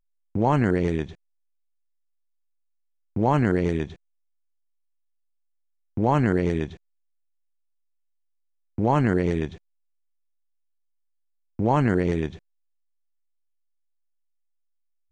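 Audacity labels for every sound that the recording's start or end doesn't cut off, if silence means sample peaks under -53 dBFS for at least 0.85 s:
3.160000	3.960000	sound
5.970000	6.770000	sound
8.780000	9.580000	sound
11.590000	12.390000	sound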